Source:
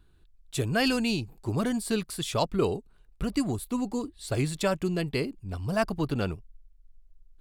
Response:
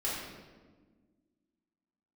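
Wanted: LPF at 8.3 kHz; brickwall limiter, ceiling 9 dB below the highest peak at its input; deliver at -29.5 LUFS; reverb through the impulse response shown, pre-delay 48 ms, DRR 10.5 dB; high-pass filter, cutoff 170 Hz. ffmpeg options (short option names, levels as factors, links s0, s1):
-filter_complex "[0:a]highpass=170,lowpass=8300,alimiter=limit=0.0944:level=0:latency=1,asplit=2[s0][s1];[1:a]atrim=start_sample=2205,adelay=48[s2];[s1][s2]afir=irnorm=-1:irlink=0,volume=0.15[s3];[s0][s3]amix=inputs=2:normalize=0,volume=1.33"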